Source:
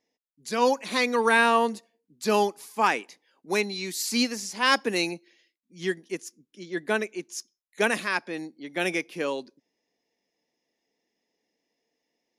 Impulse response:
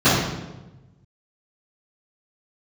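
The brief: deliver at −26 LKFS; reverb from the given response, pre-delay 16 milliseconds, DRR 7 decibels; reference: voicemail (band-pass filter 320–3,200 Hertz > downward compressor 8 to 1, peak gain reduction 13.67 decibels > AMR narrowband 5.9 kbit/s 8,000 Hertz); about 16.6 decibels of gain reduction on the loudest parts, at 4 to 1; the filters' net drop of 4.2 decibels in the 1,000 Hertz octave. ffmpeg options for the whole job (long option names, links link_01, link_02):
-filter_complex "[0:a]equalizer=frequency=1000:width_type=o:gain=-5,acompressor=threshold=-39dB:ratio=4,asplit=2[link_01][link_02];[1:a]atrim=start_sample=2205,adelay=16[link_03];[link_02][link_03]afir=irnorm=-1:irlink=0,volume=-31dB[link_04];[link_01][link_04]amix=inputs=2:normalize=0,highpass=320,lowpass=3200,acompressor=threshold=-48dB:ratio=8,volume=28.5dB" -ar 8000 -c:a libopencore_amrnb -b:a 5900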